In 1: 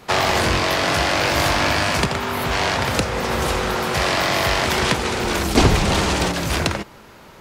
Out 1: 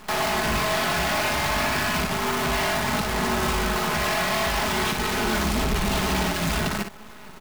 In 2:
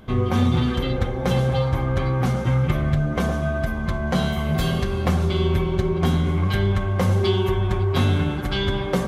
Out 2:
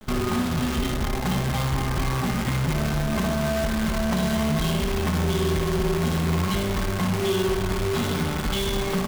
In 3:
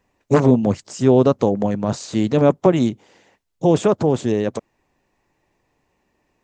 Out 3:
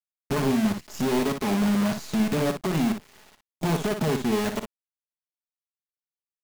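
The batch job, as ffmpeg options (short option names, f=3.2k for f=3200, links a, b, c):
-filter_complex "[0:a]lowpass=f=3.4k:p=1,equalizer=f=490:w=6.1:g=-14.5,aecho=1:1:4.7:0.63,asplit=2[a][b];[b]acompressor=threshold=-32dB:ratio=8,volume=-1dB[c];[a][c]amix=inputs=2:normalize=0,alimiter=limit=-11.5dB:level=0:latency=1:release=117,acrusher=bits=5:dc=4:mix=0:aa=0.000001,asoftclip=type=hard:threshold=-19dB,asplit=2[d][e];[e]aecho=0:1:37|59:0.141|0.422[f];[d][f]amix=inputs=2:normalize=0,volume=-2dB"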